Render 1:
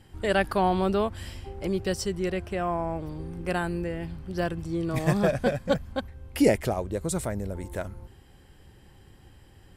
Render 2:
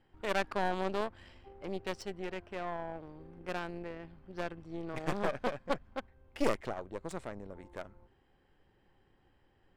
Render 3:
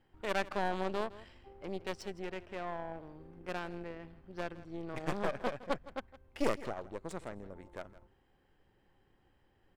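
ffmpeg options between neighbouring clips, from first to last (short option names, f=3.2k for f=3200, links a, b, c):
-af "aeval=exprs='0.376*(cos(1*acos(clip(val(0)/0.376,-1,1)))-cos(1*PI/2))+0.119*(cos(4*acos(clip(val(0)/0.376,-1,1)))-cos(4*PI/2))':c=same,equalizer=f=75:w=0.4:g=-12,adynamicsmooth=sensitivity=3.5:basefreq=2.8k,volume=-9dB"
-af "aecho=1:1:163:0.133,volume=-1.5dB"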